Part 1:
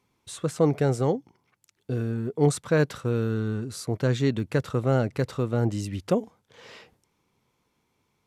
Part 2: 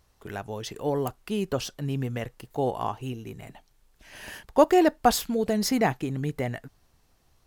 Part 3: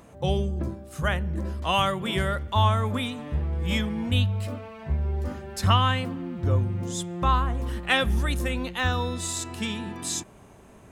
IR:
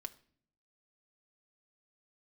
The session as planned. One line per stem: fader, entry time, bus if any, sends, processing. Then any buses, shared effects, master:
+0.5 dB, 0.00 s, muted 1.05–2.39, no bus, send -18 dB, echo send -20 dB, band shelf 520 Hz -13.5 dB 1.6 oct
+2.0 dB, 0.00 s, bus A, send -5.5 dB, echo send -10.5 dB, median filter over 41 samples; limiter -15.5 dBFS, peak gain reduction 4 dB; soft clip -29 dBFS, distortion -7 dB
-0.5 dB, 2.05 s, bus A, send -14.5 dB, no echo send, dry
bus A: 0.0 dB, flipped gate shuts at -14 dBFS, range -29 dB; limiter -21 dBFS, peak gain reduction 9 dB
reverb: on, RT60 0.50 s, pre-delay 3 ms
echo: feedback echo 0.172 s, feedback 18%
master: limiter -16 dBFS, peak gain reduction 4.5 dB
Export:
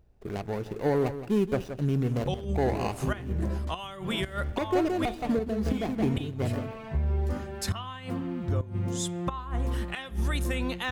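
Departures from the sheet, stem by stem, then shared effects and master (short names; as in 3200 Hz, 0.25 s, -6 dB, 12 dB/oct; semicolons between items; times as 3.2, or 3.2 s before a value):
stem 1: muted; stem 2: missing soft clip -29 dBFS, distortion -7 dB; master: missing limiter -16 dBFS, peak gain reduction 4.5 dB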